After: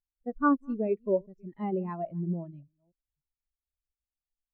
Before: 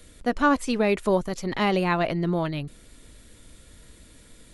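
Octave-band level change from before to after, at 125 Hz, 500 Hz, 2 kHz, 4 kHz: −7.5 dB, −6.5 dB, −12.5 dB, below −35 dB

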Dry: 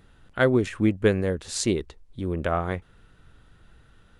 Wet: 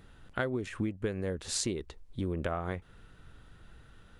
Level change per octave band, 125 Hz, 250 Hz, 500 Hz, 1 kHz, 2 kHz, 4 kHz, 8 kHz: −9.0, −10.5, −11.0, −9.0, −9.5, −5.0, −3.5 decibels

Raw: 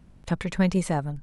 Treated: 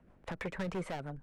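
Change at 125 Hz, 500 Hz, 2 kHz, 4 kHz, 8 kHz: −15.5, −9.5, −8.0, −10.5, −18.0 decibels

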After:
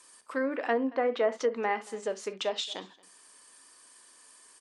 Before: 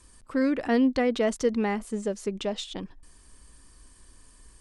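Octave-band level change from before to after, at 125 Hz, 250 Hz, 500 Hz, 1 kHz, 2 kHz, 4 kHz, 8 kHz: below −15 dB, −10.5 dB, −1.5 dB, +1.0 dB, −0.5 dB, +1.0 dB, −3.0 dB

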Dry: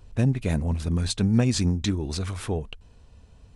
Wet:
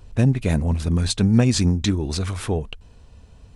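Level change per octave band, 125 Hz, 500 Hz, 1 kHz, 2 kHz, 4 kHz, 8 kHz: +4.5, +4.5, +4.5, +4.5, +4.5, +4.5 decibels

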